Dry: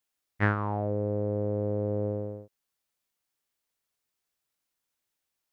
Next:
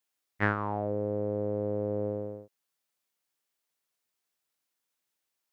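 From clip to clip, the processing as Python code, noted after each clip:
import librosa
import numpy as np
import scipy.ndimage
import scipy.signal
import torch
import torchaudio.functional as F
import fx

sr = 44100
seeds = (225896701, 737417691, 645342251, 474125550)

y = fx.highpass(x, sr, hz=180.0, slope=6)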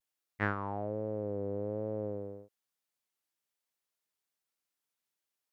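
y = fx.vibrato(x, sr, rate_hz=1.2, depth_cents=65.0)
y = y * librosa.db_to_amplitude(-5.0)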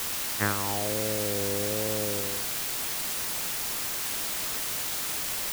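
y = fx.quant_dither(x, sr, seeds[0], bits=6, dither='triangular')
y = y * librosa.db_to_amplitude(4.5)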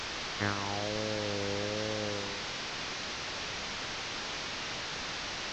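y = fx.delta_mod(x, sr, bps=32000, step_db=-29.5)
y = y * librosa.db_to_amplitude(-4.0)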